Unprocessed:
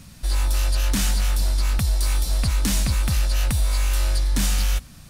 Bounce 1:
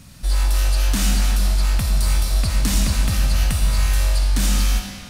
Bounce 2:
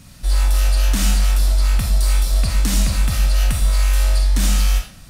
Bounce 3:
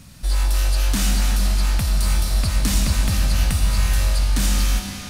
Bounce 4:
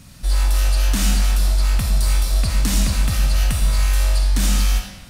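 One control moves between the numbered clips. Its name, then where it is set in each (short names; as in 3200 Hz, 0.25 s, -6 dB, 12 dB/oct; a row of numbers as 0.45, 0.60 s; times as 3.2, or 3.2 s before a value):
digital reverb, RT60: 2.2, 0.47, 5, 1.1 s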